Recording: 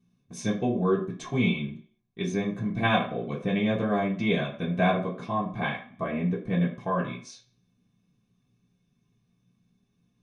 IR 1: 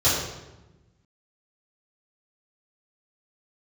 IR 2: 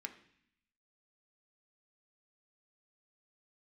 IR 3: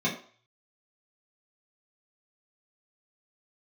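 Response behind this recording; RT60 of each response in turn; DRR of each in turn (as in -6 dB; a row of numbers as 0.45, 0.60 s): 3; 1.1, 0.65, 0.45 s; -11.5, 4.5, -7.0 dB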